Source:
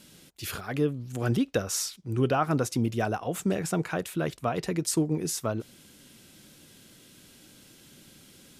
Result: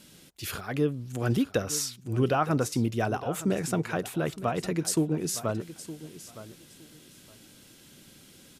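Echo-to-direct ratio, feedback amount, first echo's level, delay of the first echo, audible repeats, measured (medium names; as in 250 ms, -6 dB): -15.0 dB, 20%, -15.0 dB, 914 ms, 2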